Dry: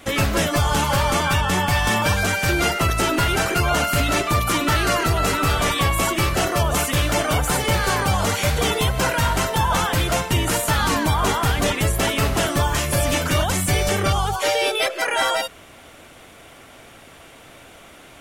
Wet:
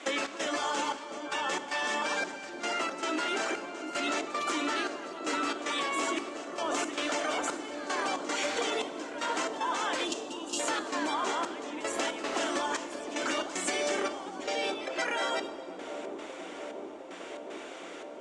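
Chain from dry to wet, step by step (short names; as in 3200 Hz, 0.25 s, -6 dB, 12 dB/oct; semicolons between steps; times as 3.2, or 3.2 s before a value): spectral delete 10.05–10.59, 380–2600 Hz; elliptic band-pass 290–7500 Hz, stop band 40 dB; limiter -14 dBFS, peak gain reduction 5.5 dB; compressor 10:1, threshold -28 dBFS, peak gain reduction 9.5 dB; step gate "xx.xxxx..." 114 bpm -12 dB; dark delay 0.71 s, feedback 83%, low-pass 530 Hz, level -5.5 dB; Schroeder reverb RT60 1.8 s, combs from 28 ms, DRR 14 dB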